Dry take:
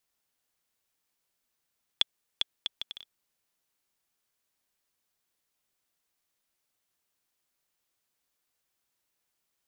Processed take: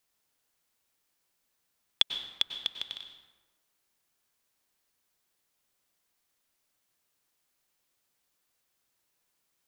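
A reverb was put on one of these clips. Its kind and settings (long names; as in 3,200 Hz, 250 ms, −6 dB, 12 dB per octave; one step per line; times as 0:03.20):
dense smooth reverb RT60 1.2 s, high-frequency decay 0.6×, pre-delay 85 ms, DRR 7 dB
level +2.5 dB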